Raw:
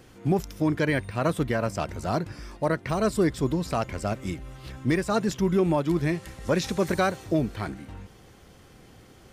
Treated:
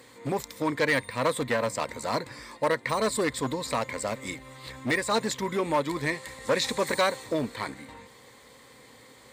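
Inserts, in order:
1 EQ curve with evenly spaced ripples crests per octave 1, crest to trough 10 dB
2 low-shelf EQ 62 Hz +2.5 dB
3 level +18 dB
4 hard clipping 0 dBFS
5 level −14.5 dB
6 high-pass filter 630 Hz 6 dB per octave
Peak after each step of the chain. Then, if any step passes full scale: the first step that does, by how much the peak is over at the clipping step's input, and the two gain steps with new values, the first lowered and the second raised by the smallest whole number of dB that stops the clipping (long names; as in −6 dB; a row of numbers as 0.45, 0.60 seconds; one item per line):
−10.0, −9.5, +8.5, 0.0, −14.5, −11.5 dBFS
step 3, 8.5 dB
step 3 +9 dB, step 5 −5.5 dB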